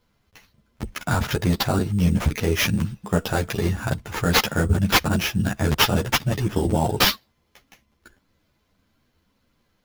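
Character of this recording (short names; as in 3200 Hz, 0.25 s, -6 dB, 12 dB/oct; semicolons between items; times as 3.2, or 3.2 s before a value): aliases and images of a low sample rate 8500 Hz, jitter 0%; a shimmering, thickened sound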